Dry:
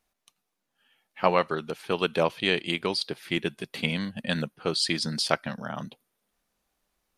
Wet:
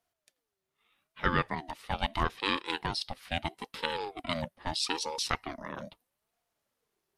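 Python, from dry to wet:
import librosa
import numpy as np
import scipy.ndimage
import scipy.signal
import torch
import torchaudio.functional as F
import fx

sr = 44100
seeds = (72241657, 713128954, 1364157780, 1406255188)

y = fx.ring_lfo(x, sr, carrier_hz=540.0, swing_pct=30, hz=0.78)
y = y * librosa.db_to_amplitude(-2.5)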